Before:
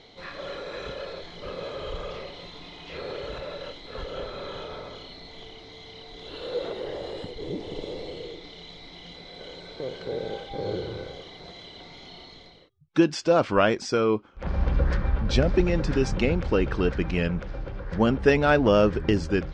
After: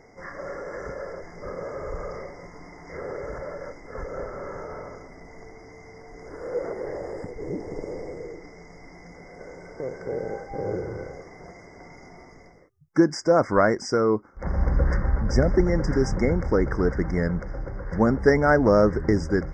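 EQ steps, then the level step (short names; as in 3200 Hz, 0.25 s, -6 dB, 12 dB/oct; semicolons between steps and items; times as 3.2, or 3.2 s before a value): brick-wall FIR band-stop 2200–4800 Hz; +1.5 dB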